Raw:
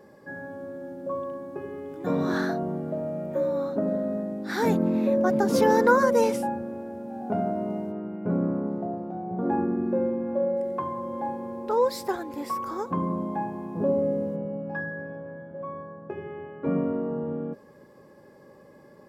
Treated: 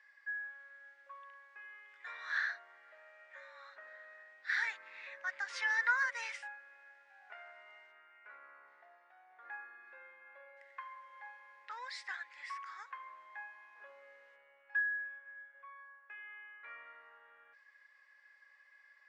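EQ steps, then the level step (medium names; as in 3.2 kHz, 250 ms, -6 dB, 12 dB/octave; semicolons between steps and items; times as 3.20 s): ladder high-pass 1.7 kHz, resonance 65%; brick-wall FIR low-pass 10 kHz; distance through air 120 m; +6.0 dB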